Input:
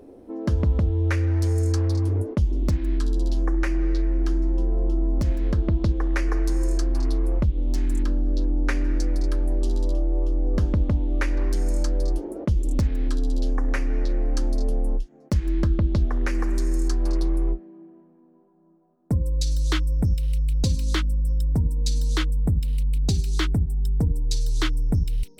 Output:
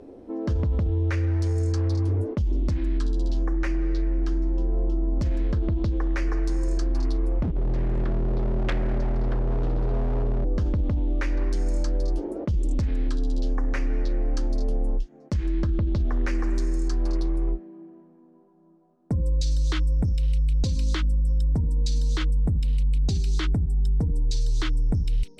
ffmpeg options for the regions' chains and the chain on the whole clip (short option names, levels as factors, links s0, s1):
-filter_complex "[0:a]asettb=1/sr,asplit=3[s0][s1][s2];[s0]atrim=end=7.434[s3];[s1]atrim=start=7.43:end=10.45,asetpts=PTS-STARTPTS,afade=t=in:d=0.004:c=qsin,afade=t=out:st=3.016:d=0.004:c=qsin,lowpass=1900,aeval=exprs='0.0944*(abs(mod(val(0)/0.0944+3,4)-2)-1)':c=same[s4];[s2]atrim=start=10.446[s5];[s3][s4]acrossfade=d=0.004:c1=hsin:c2=qsin[s6];[s6][s5]acrossfade=d=0.004:c1=qsin:c2=hsin,lowpass=6700,alimiter=limit=0.106:level=0:latency=1:release=17,volume=1.19"